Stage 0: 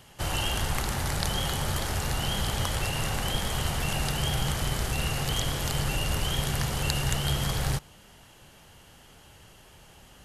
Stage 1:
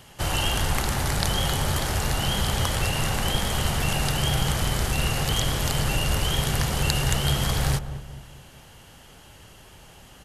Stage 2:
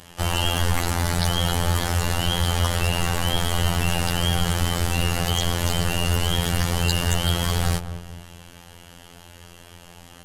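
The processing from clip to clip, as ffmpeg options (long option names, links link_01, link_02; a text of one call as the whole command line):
ffmpeg -i in.wav -filter_complex "[0:a]asplit=2[link_01][link_02];[link_02]adelay=215,lowpass=frequency=880:poles=1,volume=-10.5dB,asplit=2[link_03][link_04];[link_04]adelay=215,lowpass=frequency=880:poles=1,volume=0.47,asplit=2[link_05][link_06];[link_06]adelay=215,lowpass=frequency=880:poles=1,volume=0.47,asplit=2[link_07][link_08];[link_08]adelay=215,lowpass=frequency=880:poles=1,volume=0.47,asplit=2[link_09][link_10];[link_10]adelay=215,lowpass=frequency=880:poles=1,volume=0.47[link_11];[link_01][link_03][link_05][link_07][link_09][link_11]amix=inputs=6:normalize=0,volume=4dB" out.wav
ffmpeg -i in.wav -af "afftfilt=real='hypot(re,im)*cos(PI*b)':imag='0':win_size=2048:overlap=0.75,acontrast=67" out.wav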